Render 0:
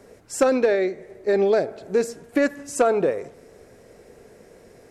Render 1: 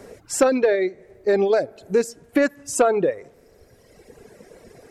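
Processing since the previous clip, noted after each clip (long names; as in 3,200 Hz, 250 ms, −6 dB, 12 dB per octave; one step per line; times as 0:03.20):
reverb reduction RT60 1.9 s
in parallel at +1 dB: downward compressor, threshold −31 dBFS, peak gain reduction 16 dB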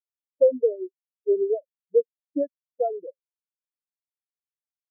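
high-frequency loss of the air 260 metres
every bin expanded away from the loudest bin 4 to 1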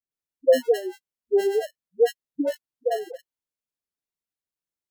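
in parallel at −11 dB: decimation without filtering 37×
on the sum: all-pass dispersion highs, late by 112 ms, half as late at 480 Hz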